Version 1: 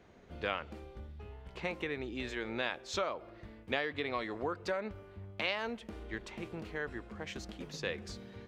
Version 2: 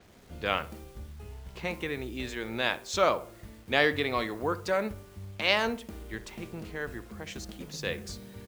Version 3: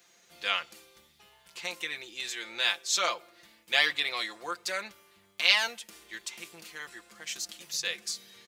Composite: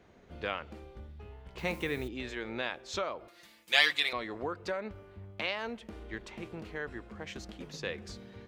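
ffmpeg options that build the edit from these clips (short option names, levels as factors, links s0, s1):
-filter_complex "[0:a]asplit=3[s0][s1][s2];[s0]atrim=end=1.582[s3];[1:a]atrim=start=1.578:end=2.082[s4];[s1]atrim=start=2.078:end=3.282[s5];[2:a]atrim=start=3.278:end=4.132[s6];[s2]atrim=start=4.128[s7];[s3][s4]acrossfade=d=0.004:c1=hsin:c2=hsin[s8];[s8][s5]acrossfade=d=0.004:c1=hsin:c2=hsin[s9];[s9][s6]acrossfade=d=0.004:c1=hsin:c2=hsin[s10];[s10][s7]acrossfade=d=0.004:c1=hsin:c2=hsin"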